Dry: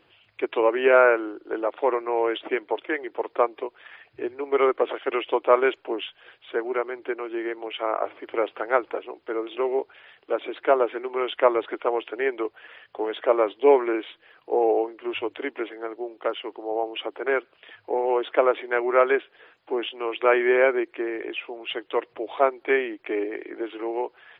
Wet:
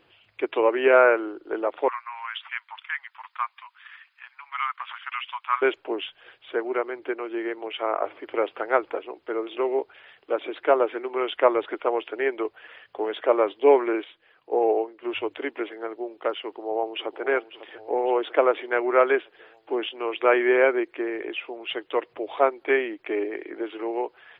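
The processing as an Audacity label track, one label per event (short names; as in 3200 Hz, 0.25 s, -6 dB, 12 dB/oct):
1.880000	5.620000	steep high-pass 1000 Hz 48 dB/oct
14.040000	15.030000	upward expander, over -30 dBFS
16.400000	17.240000	echo throw 0.55 s, feedback 60%, level -13.5 dB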